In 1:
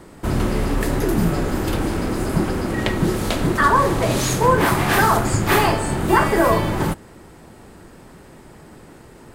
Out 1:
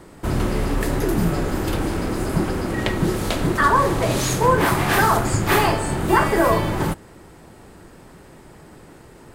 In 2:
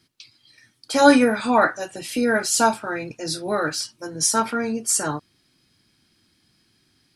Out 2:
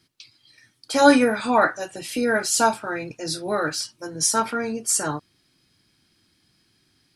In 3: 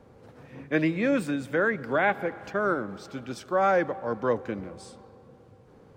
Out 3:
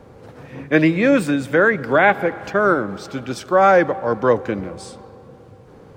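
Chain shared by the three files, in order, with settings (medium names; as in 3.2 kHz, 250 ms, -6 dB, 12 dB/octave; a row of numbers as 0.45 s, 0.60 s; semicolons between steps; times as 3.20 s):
peaking EQ 230 Hz -3 dB 0.23 oct; peak normalisation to -2 dBFS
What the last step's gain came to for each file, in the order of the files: -1.0 dB, -0.5 dB, +10.0 dB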